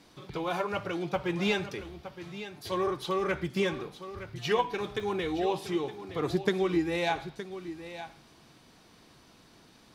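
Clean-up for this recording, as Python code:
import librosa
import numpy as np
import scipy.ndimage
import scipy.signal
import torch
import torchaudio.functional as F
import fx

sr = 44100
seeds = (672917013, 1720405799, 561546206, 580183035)

y = fx.fix_interpolate(x, sr, at_s=(5.0,), length_ms=2.8)
y = fx.fix_echo_inverse(y, sr, delay_ms=917, level_db=-12.5)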